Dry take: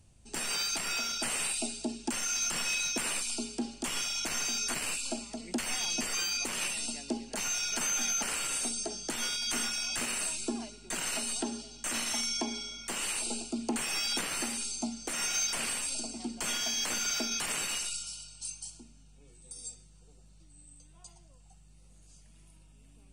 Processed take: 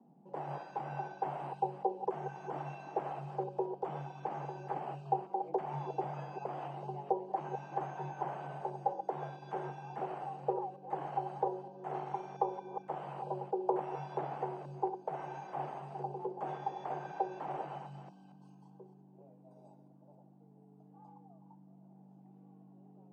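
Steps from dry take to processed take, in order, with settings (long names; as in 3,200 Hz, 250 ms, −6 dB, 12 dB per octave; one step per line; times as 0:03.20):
delay that plays each chunk backwards 229 ms, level −9 dB
low-pass with resonance 650 Hz, resonance Q 4.8
frequency shifter +140 Hz
level −3 dB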